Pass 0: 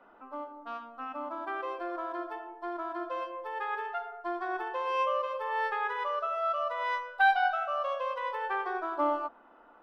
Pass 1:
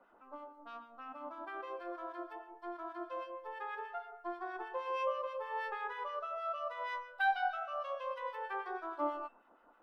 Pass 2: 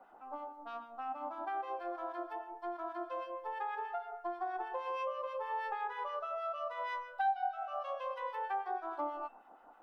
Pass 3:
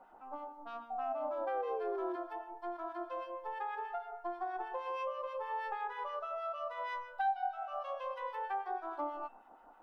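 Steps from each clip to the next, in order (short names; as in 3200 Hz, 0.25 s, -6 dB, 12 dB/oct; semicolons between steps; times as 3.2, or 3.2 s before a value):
resonator 530 Hz, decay 0.56 s, mix 70%; harmonic tremolo 6.3 Hz, depth 70%, crossover 1400 Hz; gain +5.5 dB
bell 780 Hz +15 dB 0.24 oct; compressor 3:1, threshold -38 dBFS, peak gain reduction 18.5 dB; gain +2 dB
painted sound fall, 0.9–2.16, 350–770 Hz -38 dBFS; whine 920 Hz -65 dBFS; low shelf 120 Hz +9 dB; gain -1 dB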